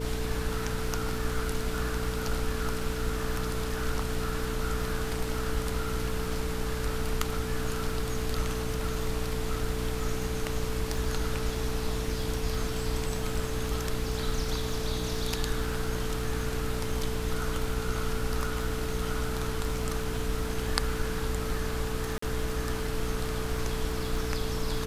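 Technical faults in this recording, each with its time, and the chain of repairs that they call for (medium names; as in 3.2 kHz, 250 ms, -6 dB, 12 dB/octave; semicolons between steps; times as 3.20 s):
crackle 30 per s -36 dBFS
hum 60 Hz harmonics 5 -35 dBFS
whine 440 Hz -36 dBFS
22.18–22.22 s: dropout 44 ms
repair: de-click; band-stop 440 Hz, Q 30; de-hum 60 Hz, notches 5; interpolate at 22.18 s, 44 ms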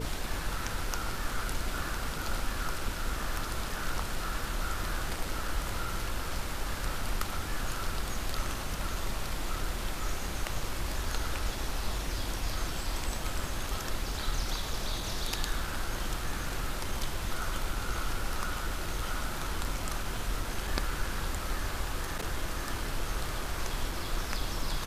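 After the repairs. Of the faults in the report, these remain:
nothing left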